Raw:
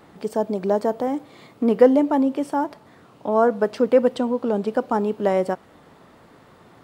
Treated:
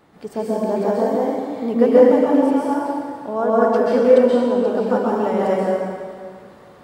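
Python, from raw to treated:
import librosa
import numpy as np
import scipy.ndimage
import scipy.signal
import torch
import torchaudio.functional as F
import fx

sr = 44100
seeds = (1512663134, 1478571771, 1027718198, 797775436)

y = fx.rev_plate(x, sr, seeds[0], rt60_s=2.0, hf_ratio=0.85, predelay_ms=115, drr_db=-7.5)
y = F.gain(torch.from_numpy(y), -5.0).numpy()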